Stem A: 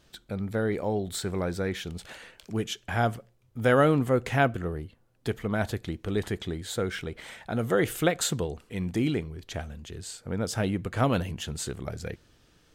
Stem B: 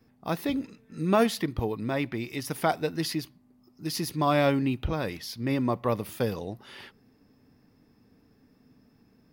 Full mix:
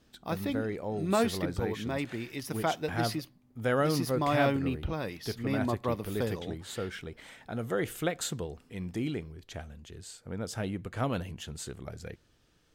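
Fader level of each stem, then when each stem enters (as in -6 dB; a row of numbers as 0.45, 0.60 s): -6.5, -4.5 dB; 0.00, 0.00 s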